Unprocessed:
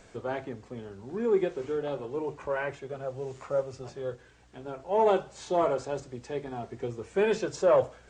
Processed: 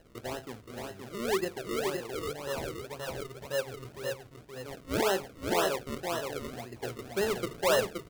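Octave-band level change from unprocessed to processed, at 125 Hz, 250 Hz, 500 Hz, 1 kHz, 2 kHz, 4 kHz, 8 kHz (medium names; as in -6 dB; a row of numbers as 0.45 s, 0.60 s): -1.0 dB, -2.0 dB, -4.5 dB, -3.0 dB, +3.0 dB, +9.5 dB, no reading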